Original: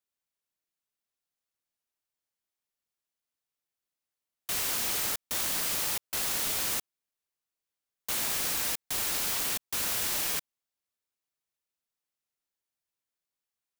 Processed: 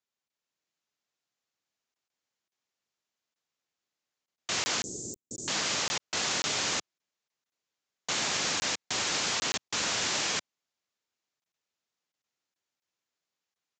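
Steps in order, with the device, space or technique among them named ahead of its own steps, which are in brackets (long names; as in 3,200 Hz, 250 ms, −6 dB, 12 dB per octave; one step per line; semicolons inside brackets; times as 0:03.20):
call with lost packets (high-pass filter 110 Hz 12 dB per octave; downsampling to 16,000 Hz; automatic gain control gain up to 3.5 dB; dropped packets)
0:04.82–0:05.48: Chebyshev band-stop filter 390–7,500 Hz, order 3
level +1.5 dB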